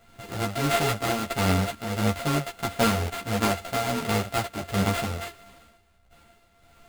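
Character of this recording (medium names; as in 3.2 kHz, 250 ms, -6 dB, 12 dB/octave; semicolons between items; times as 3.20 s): a buzz of ramps at a fixed pitch in blocks of 64 samples; tremolo triangle 1.5 Hz, depth 65%; aliases and images of a low sample rate 5.7 kHz, jitter 20%; a shimmering, thickened sound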